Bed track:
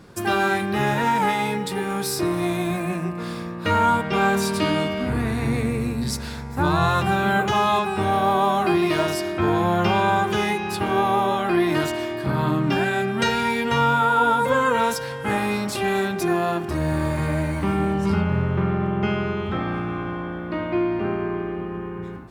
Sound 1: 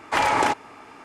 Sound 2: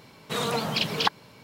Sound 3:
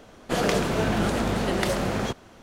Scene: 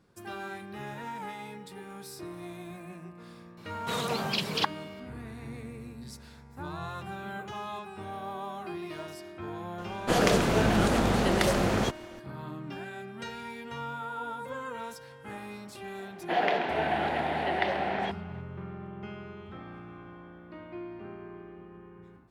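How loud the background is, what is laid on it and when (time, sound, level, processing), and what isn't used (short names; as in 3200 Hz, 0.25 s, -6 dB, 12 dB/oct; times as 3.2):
bed track -18.5 dB
3.57 add 2 -4 dB
9.78 add 3
15.99 add 3 -2.5 dB + speaker cabinet 400–3400 Hz, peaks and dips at 500 Hz -6 dB, 760 Hz +10 dB, 1200 Hz -9 dB, 1900 Hz +5 dB
not used: 1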